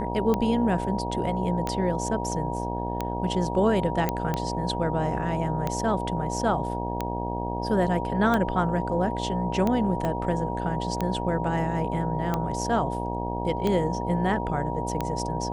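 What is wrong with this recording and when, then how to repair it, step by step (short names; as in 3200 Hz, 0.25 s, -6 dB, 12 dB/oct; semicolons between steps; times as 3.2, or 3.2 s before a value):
buzz 60 Hz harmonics 15 -31 dBFS
tick 45 rpm -13 dBFS
tone 950 Hz -32 dBFS
4.09 pop -11 dBFS
10.05 pop -16 dBFS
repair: de-click; notch 950 Hz, Q 30; de-hum 60 Hz, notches 15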